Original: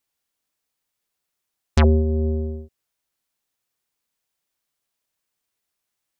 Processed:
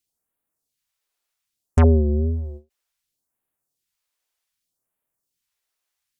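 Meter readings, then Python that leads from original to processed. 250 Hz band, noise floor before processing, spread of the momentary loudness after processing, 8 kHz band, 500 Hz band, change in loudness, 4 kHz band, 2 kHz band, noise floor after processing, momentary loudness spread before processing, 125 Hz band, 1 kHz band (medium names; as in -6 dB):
+0.5 dB, -81 dBFS, 13 LU, no reading, 0.0 dB, +1.0 dB, under -10 dB, -5.5 dB, -83 dBFS, 13 LU, +1.5 dB, -0.5 dB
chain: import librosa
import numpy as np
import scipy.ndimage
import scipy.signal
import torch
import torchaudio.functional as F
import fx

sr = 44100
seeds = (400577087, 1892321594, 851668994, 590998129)

y = fx.wow_flutter(x, sr, seeds[0], rate_hz=2.1, depth_cents=97.0)
y = fx.phaser_stages(y, sr, stages=2, low_hz=120.0, high_hz=5000.0, hz=0.65, feedback_pct=25)
y = fx.end_taper(y, sr, db_per_s=300.0)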